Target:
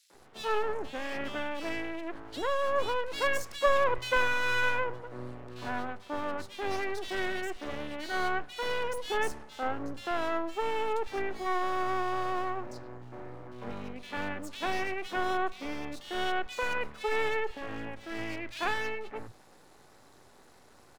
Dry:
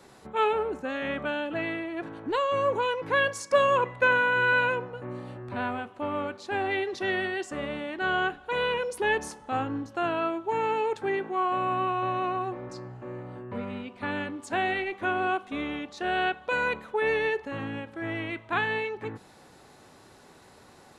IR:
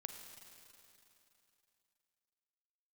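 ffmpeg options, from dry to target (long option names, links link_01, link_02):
-filter_complex "[0:a]aeval=exprs='max(val(0),0)':channel_layout=same,acrossover=split=170|2800[link_01][link_02][link_03];[link_02]adelay=100[link_04];[link_01]adelay=140[link_05];[link_05][link_04][link_03]amix=inputs=3:normalize=0"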